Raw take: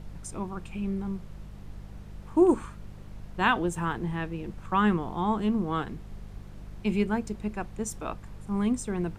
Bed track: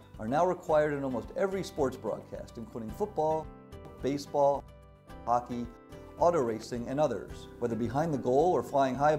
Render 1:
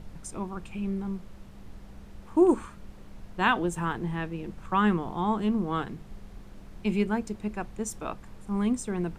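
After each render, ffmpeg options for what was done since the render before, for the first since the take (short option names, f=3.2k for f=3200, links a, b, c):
-af "bandreject=f=50:t=h:w=4,bandreject=f=100:t=h:w=4,bandreject=f=150:t=h:w=4"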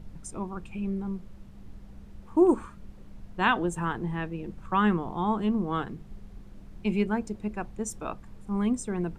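-af "afftdn=nr=6:nf=-47"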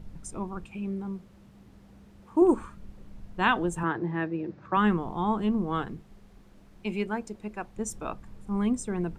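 -filter_complex "[0:a]asettb=1/sr,asplit=3[a][b][c];[a]atrim=end=0.654[d];[b]atrim=start=0.65:end=2.42,asetpts=PTS-STARTPTS,afade=t=in:d=0.004:c=qsin,afade=t=out:st=1.766:d=0.004:c=qsin,highpass=f=150:p=1[e];[c]atrim=start=2.416[f];[d][e]acrossfade=d=0.004:c1=hsin:c2=qsin[g];[g][f]acrossfade=d=0.004:c1=qsin:c2=hsin,asettb=1/sr,asplit=3[h][i][j];[h]atrim=end=3.834[k];[i]atrim=start=3.83:end=4.77,asetpts=PTS-STARTPTS,afade=t=in:d=0.004:c=qsin,afade=t=out:st=0.936:d=0.004:c=qsin,highpass=f=100:w=0.5412,highpass=f=100:w=1.3066,equalizer=f=230:t=q:w=4:g=-9,equalizer=f=320:t=q:w=4:g=8,equalizer=f=590:t=q:w=4:g=5,equalizer=f=1.7k:t=q:w=4:g=4,equalizer=f=3.1k:t=q:w=4:g=-6,lowpass=f=5.3k:w=0.5412,lowpass=f=5.3k:w=1.3066[l];[j]atrim=start=4.766[m];[k][l]acrossfade=d=0.004:c1=hsin:c2=qsin[n];[n][m]acrossfade=d=0.004:c1=qsin:c2=hsin,asettb=1/sr,asplit=3[o][p][q];[o]atrim=end=6.004[r];[p]atrim=start=6:end=7.76,asetpts=PTS-STARTPTS,afade=t=in:d=0.004:c=qsin,afade=t=out:st=1.756:d=0.004:c=qsin,lowshelf=f=220:g=-10.5[s];[q]atrim=start=7.756[t];[r][s]acrossfade=d=0.004:c1=hsin:c2=qsin[u];[u][t]acrossfade=d=0.004:c1=qsin:c2=hsin"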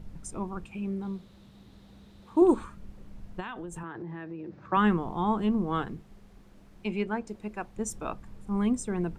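-filter_complex "[0:a]asettb=1/sr,asplit=3[a][b][c];[a]atrim=end=1.024[d];[b]atrim=start=1.02:end=2.64,asetpts=PTS-STARTPTS,afade=t=in:d=0.004:c=qsin,afade=t=out:st=1.616:d=0.004:c=qsin,equalizer=f=3.8k:w=3.1:g=12.5[e];[c]atrim=start=2.636[f];[d][e]acrossfade=d=0.004:c1=hsin:c2=qsin[g];[g][f]acrossfade=d=0.004:c1=qsin:c2=hsin,asplit=3[h][i][j];[h]afade=t=out:st=3.39:d=0.02[k];[i]acompressor=threshold=-35dB:ratio=8:attack=3.2:release=140:knee=1:detection=peak,afade=t=in:st=3.39:d=0.02,afade=t=out:st=4.61:d=0.02[l];[j]afade=t=in:st=4.61:d=0.02[m];[k][l][m]amix=inputs=3:normalize=0,asettb=1/sr,asplit=3[n][o][p];[n]atrim=end=6.874[q];[o]atrim=start=6.87:end=7.29,asetpts=PTS-STARTPTS,afade=t=in:d=0.004:c=qsin,afade=t=out:st=0.416:d=0.004:c=qsin,highshelf=f=7.3k:g=-12[r];[p]atrim=start=7.286[s];[q][r]acrossfade=d=0.004:c1=hsin:c2=qsin[t];[t][s]acrossfade=d=0.004:c1=qsin:c2=hsin"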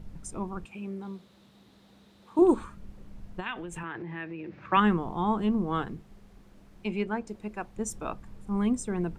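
-filter_complex "[0:a]asettb=1/sr,asplit=3[a][b][c];[a]atrim=end=0.654[d];[b]atrim=start=0.65:end=2.39,asetpts=PTS-STARTPTS,afade=t=in:d=0.004:c=qsin,afade=t=out:st=1.736:d=0.004:c=qsin,highpass=f=280:p=1[e];[c]atrim=start=2.386[f];[d][e]acrossfade=d=0.004:c1=hsin:c2=qsin[g];[g][f]acrossfade=d=0.004:c1=qsin:c2=hsin,asettb=1/sr,asplit=3[h][i][j];[h]atrim=end=3.464[k];[i]atrim=start=3.46:end=4.8,asetpts=PTS-STARTPTS,afade=t=in:d=0.004:c=qsin,afade=t=out:st=1.336:d=0.004:c=qsin,equalizer=f=2.4k:w=1.2:g=12.5[l];[j]atrim=start=4.796[m];[k][l]acrossfade=d=0.004:c1=hsin:c2=qsin[n];[n][m]acrossfade=d=0.004:c1=qsin:c2=hsin"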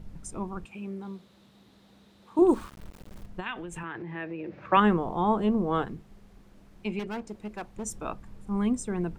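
-filter_complex "[0:a]asettb=1/sr,asplit=3[a][b][c];[a]atrim=end=2.484[d];[b]atrim=start=2.48:end=3.26,asetpts=PTS-STARTPTS,afade=t=in:d=0.004:c=qsin,afade=t=out:st=0.776:d=0.004:c=qsin,aeval=exprs='val(0)*gte(abs(val(0)),0.00631)':c=same[e];[c]atrim=start=3.256[f];[d][e]acrossfade=d=0.004:c1=hsin:c2=qsin[g];[g][f]acrossfade=d=0.004:c1=qsin:c2=hsin,asettb=1/sr,asplit=3[h][i][j];[h]atrim=end=4.154[k];[i]atrim=start=4.15:end=5.85,asetpts=PTS-STARTPTS,afade=t=in:d=0.004:c=qsin,afade=t=out:st=1.696:d=0.004:c=qsin,equalizer=f=560:w=1.5:g=8[l];[j]atrim=start=5.846[m];[k][l]acrossfade=d=0.004:c1=hsin:c2=qsin[n];[n][m]acrossfade=d=0.004:c1=qsin:c2=hsin,asettb=1/sr,asplit=3[o][p][q];[o]atrim=end=6.994[r];[p]atrim=start=6.99:end=7.85,asetpts=PTS-STARTPTS,afade=t=in:d=0.004:c=qsin,afade=t=out:st=0.856:d=0.004:c=qsin,asoftclip=type=hard:threshold=-31dB[s];[q]atrim=start=7.846[t];[r][s]acrossfade=d=0.004:c1=hsin:c2=qsin[u];[u][t]acrossfade=d=0.004:c1=qsin:c2=hsin"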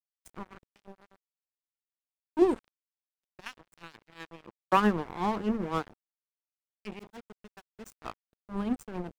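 -af "tremolo=f=7.8:d=0.44,aeval=exprs='sgn(val(0))*max(abs(val(0))-0.0168,0)':c=same"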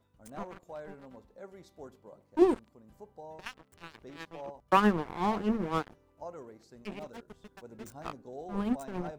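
-filter_complex "[1:a]volume=-18dB[a];[0:a][a]amix=inputs=2:normalize=0"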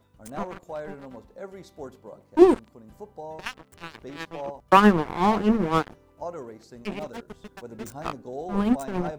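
-af "volume=8.5dB,alimiter=limit=-1dB:level=0:latency=1"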